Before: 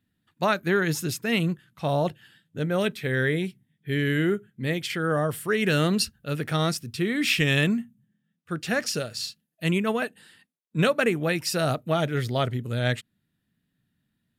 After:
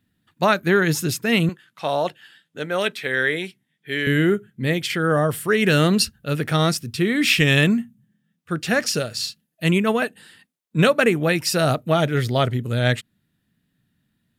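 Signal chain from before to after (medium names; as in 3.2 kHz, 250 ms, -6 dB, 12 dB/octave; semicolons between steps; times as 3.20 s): 1.49–4.07 s: frequency weighting A; trim +5.5 dB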